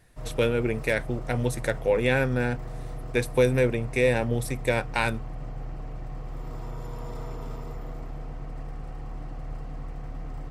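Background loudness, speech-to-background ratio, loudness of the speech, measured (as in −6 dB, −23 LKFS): −39.5 LKFS, 13.5 dB, −26.0 LKFS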